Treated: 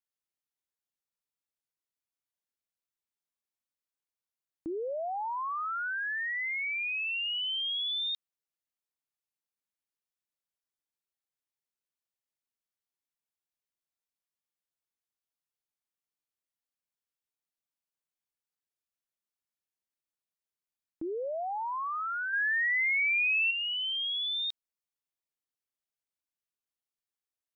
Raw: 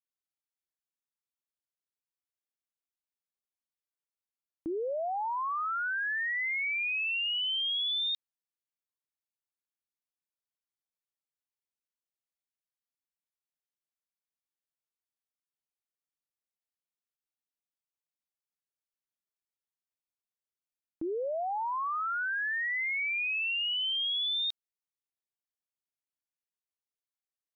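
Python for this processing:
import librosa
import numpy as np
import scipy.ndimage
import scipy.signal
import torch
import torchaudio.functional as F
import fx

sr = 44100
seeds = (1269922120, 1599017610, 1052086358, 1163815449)

y = fx.peak_eq(x, sr, hz=2800.0, db=6.0, octaves=2.8, at=(22.33, 23.51))
y = y * librosa.db_to_amplitude(-1.5)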